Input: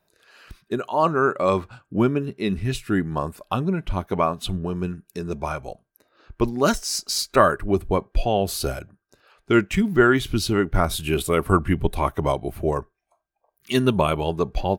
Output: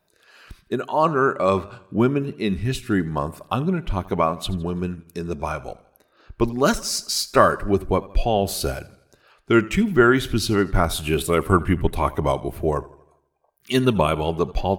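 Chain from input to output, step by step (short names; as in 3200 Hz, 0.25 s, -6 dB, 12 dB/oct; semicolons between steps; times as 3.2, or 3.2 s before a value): wow and flutter 18 cents; warbling echo 82 ms, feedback 51%, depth 71 cents, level -20 dB; gain +1 dB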